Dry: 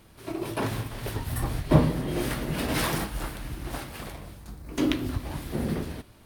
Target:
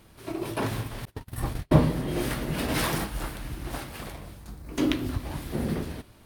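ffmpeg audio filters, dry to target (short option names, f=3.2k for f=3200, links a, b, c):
-filter_complex "[0:a]asettb=1/sr,asplit=3[a][b][c];[a]atrim=end=1.054[d];[b]atrim=start=1.05:end=1.79,asetpts=PTS-STARTPTS,afade=t=in:d=0.004:c=qsin,afade=t=out:st=0.736:d=0.004:c=qsin,agate=range=-35dB:threshold=-28dB:ratio=16:detection=peak[e];[c]atrim=start=1.786[f];[d][e]acrossfade=d=0.004:c1=hsin:c2=qsin[g];[g][f]acrossfade=d=0.004:c1=qsin:c2=hsin"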